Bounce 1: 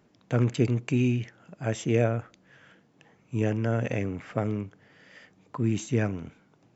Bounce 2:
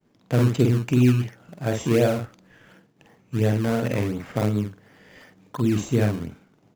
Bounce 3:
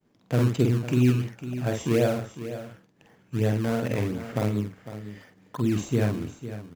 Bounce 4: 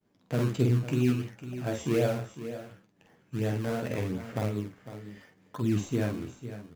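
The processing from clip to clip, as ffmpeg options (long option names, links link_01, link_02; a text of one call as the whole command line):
ffmpeg -i in.wav -filter_complex "[0:a]agate=range=-33dB:threshold=-58dB:ratio=3:detection=peak,asplit=2[link_01][link_02];[link_02]adelay=48,volume=-4dB[link_03];[link_01][link_03]amix=inputs=2:normalize=0,asplit=2[link_04][link_05];[link_05]acrusher=samples=22:mix=1:aa=0.000001:lfo=1:lforange=22:lforate=2.8,volume=-4.5dB[link_06];[link_04][link_06]amix=inputs=2:normalize=0" out.wav
ffmpeg -i in.wav -af "aecho=1:1:503:0.237,volume=-3dB" out.wav
ffmpeg -i in.wav -af "flanger=delay=9.2:depth=7.4:regen=45:speed=0.7:shape=triangular" out.wav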